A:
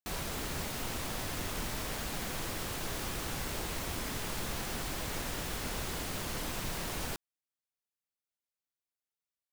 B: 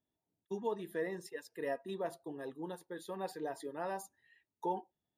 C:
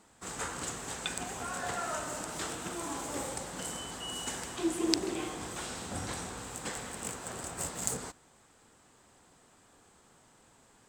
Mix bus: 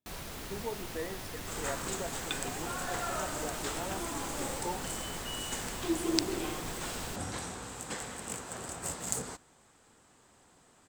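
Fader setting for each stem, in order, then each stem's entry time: -5.0 dB, -2.0 dB, -0.5 dB; 0.00 s, 0.00 s, 1.25 s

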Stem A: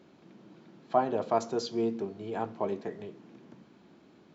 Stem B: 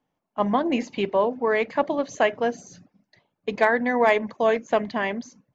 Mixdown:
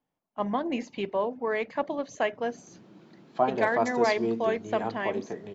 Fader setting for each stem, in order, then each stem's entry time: +1.0 dB, -6.5 dB; 2.45 s, 0.00 s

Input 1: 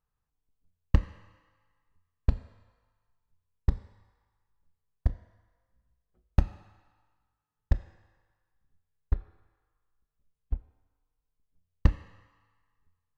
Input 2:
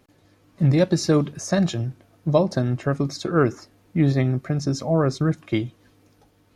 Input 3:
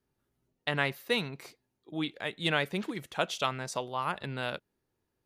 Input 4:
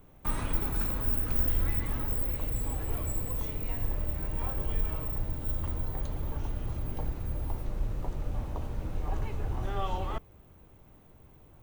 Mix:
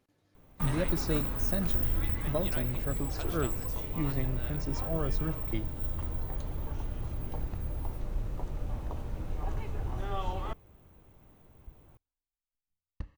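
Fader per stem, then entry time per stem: -18.5 dB, -14.0 dB, -15.0 dB, -2.0 dB; 1.15 s, 0.00 s, 0.00 s, 0.35 s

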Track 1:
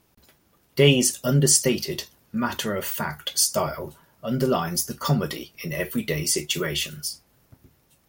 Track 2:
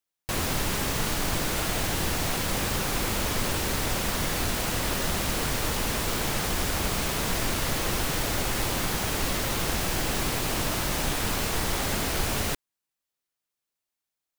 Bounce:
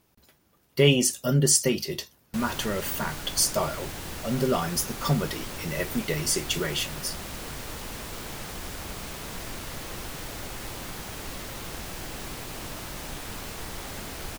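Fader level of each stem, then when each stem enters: -2.5 dB, -9.5 dB; 0.00 s, 2.05 s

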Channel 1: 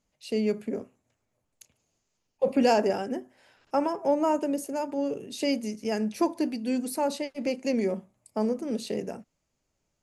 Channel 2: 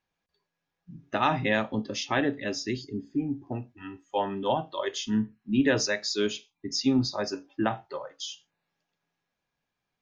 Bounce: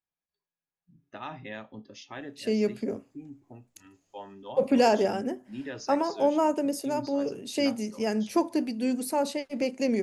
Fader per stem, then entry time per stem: +0.5 dB, -14.5 dB; 2.15 s, 0.00 s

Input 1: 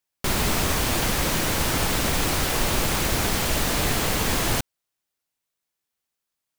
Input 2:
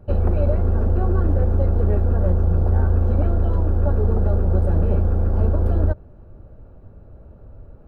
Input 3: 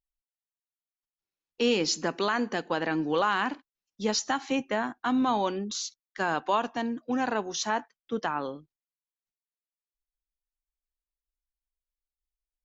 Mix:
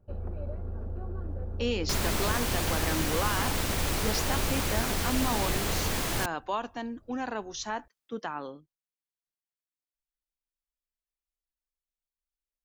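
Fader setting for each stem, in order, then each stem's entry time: -7.0 dB, -17.5 dB, -5.5 dB; 1.65 s, 0.00 s, 0.00 s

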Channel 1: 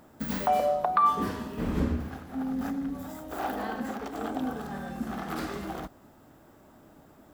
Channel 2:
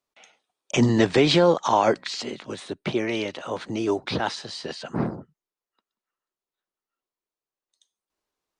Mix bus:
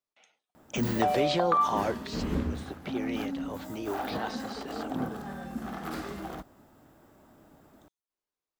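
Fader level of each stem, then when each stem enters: -2.5 dB, -10.5 dB; 0.55 s, 0.00 s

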